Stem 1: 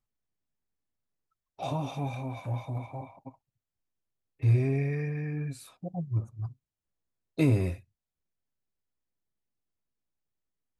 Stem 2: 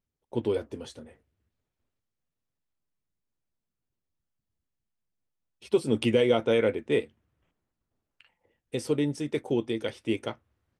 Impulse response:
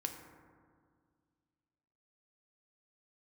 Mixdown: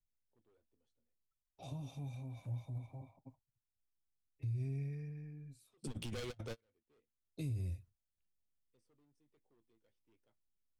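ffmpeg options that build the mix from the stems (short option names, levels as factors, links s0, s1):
-filter_complex "[0:a]equalizer=f=1200:w=0.49:g=-11,volume=1.5,afade=t=out:st=4.82:d=0.59:silence=0.334965,afade=t=in:st=7.04:d=0.49:silence=0.251189,asplit=2[s0][s1];[1:a]asoftclip=type=hard:threshold=0.0447,volume=0.841[s2];[s1]apad=whole_len=475961[s3];[s2][s3]sidechaingate=range=0.00708:threshold=0.00141:ratio=16:detection=peak[s4];[s0][s4]amix=inputs=2:normalize=0,lowshelf=f=69:g=8.5,acrossover=split=140|3000[s5][s6][s7];[s6]acompressor=threshold=0.00251:ratio=2[s8];[s5][s8][s7]amix=inputs=3:normalize=0,alimiter=level_in=2.82:limit=0.0631:level=0:latency=1:release=64,volume=0.355"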